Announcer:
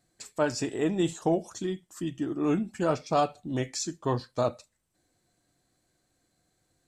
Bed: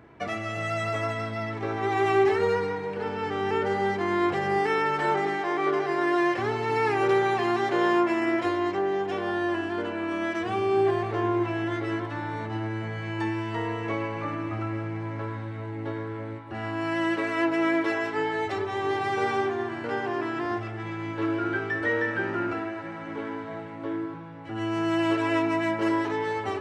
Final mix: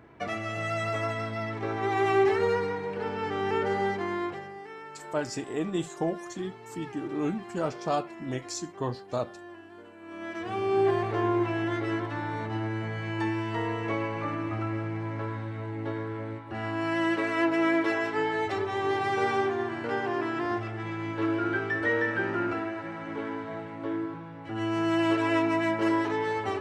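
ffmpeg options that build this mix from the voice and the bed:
-filter_complex "[0:a]adelay=4750,volume=0.668[s0];[1:a]volume=6.68,afade=t=out:st=3.81:d=0.72:silence=0.141254,afade=t=in:st=10:d=0.9:silence=0.125893[s1];[s0][s1]amix=inputs=2:normalize=0"

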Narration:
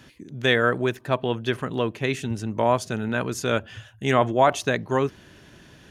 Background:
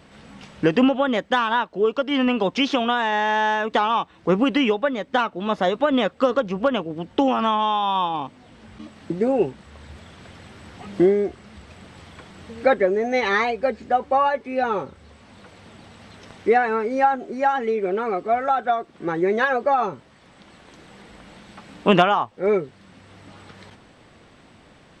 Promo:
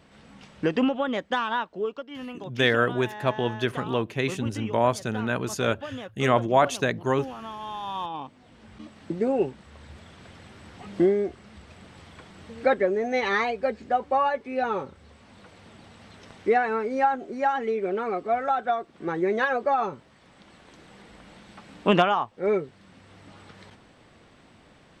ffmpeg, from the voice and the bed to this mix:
-filter_complex "[0:a]adelay=2150,volume=0.841[s0];[1:a]volume=2.37,afade=t=out:st=1.7:d=0.37:silence=0.266073,afade=t=in:st=7.55:d=1.19:silence=0.211349[s1];[s0][s1]amix=inputs=2:normalize=0"

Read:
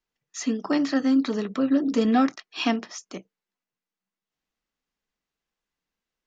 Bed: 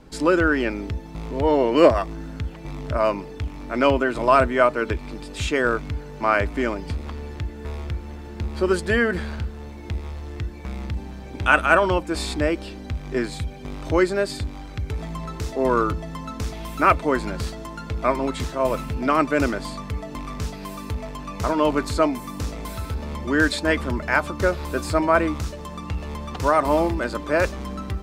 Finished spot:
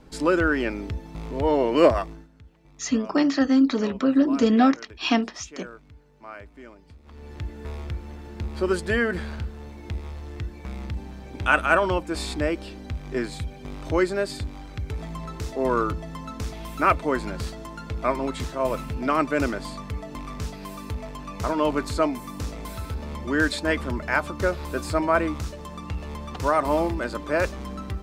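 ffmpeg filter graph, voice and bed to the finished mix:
-filter_complex "[0:a]adelay=2450,volume=1.33[s0];[1:a]volume=5.96,afade=t=out:st=1.98:d=0.3:silence=0.11885,afade=t=in:st=7.03:d=0.44:silence=0.125893[s1];[s0][s1]amix=inputs=2:normalize=0"

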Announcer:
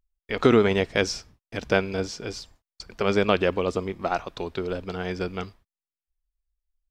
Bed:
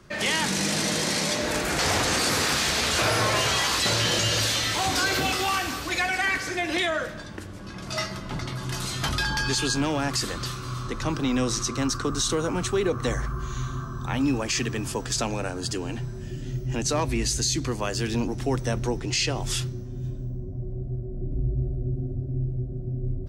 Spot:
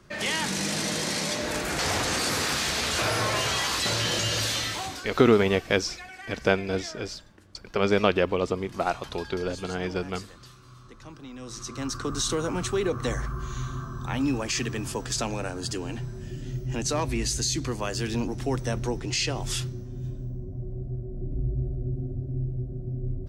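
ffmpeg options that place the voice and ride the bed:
-filter_complex "[0:a]adelay=4750,volume=0.944[s0];[1:a]volume=4.22,afade=t=out:st=4.61:d=0.42:silence=0.188365,afade=t=in:st=11.39:d=0.84:silence=0.16788[s1];[s0][s1]amix=inputs=2:normalize=0"

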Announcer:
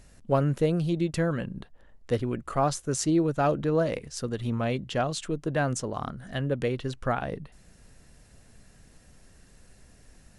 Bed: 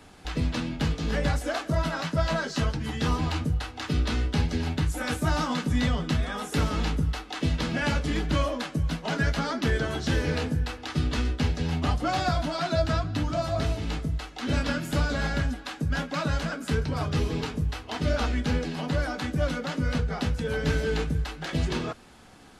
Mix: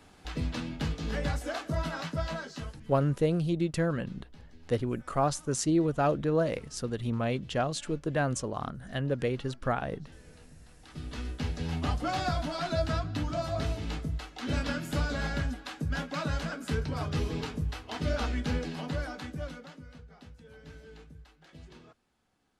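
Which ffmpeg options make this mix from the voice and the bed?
-filter_complex "[0:a]adelay=2600,volume=0.794[s0];[1:a]volume=8.41,afade=t=out:st=2.02:d=0.94:silence=0.0707946,afade=t=in:st=10.71:d=1.08:silence=0.0630957,afade=t=out:st=18.67:d=1.2:silence=0.112202[s1];[s0][s1]amix=inputs=2:normalize=0"

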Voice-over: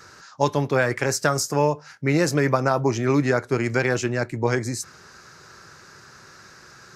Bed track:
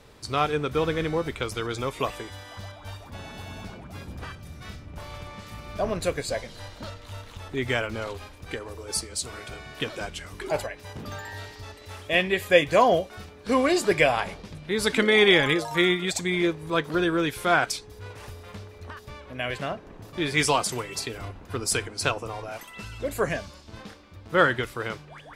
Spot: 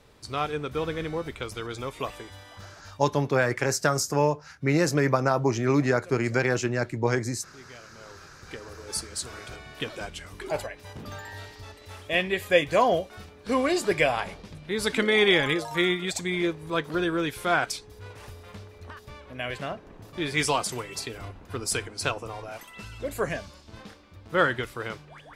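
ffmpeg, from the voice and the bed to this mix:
-filter_complex "[0:a]adelay=2600,volume=0.75[s0];[1:a]volume=5.31,afade=t=out:st=2.47:d=0.84:silence=0.141254,afade=t=in:st=7.9:d=1.11:silence=0.112202[s1];[s0][s1]amix=inputs=2:normalize=0"

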